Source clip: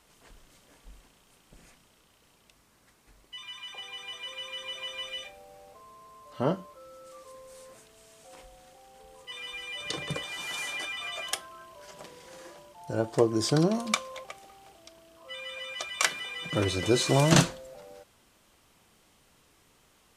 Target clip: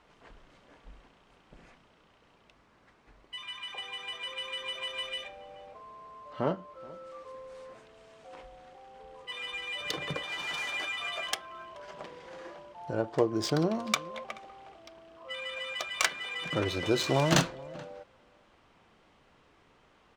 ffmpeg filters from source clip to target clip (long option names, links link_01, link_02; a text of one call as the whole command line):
ffmpeg -i in.wav -filter_complex "[0:a]asplit=2[link_01][link_02];[link_02]acompressor=threshold=-37dB:ratio=6,volume=2.5dB[link_03];[link_01][link_03]amix=inputs=2:normalize=0,lowshelf=frequency=320:gain=-5.5,aecho=1:1:429:0.0841,adynamicsmooth=sensitivity=2.5:basefreq=2700,volume=-2.5dB" out.wav